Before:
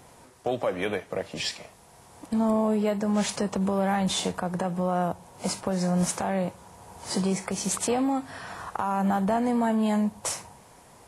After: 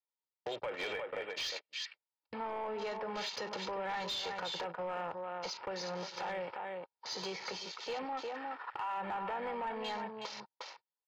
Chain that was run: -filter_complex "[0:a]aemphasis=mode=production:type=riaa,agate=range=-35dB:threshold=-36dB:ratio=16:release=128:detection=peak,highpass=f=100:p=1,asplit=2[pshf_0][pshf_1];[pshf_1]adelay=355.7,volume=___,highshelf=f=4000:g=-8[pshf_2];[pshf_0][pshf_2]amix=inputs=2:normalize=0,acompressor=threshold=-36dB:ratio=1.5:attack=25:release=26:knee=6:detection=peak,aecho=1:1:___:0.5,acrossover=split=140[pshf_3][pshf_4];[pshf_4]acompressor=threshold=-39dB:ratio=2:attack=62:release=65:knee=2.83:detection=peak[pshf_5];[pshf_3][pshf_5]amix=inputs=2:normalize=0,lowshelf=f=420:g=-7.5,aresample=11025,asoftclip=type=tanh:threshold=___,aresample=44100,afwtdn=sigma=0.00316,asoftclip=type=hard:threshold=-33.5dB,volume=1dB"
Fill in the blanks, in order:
-9dB, 2.2, -33.5dB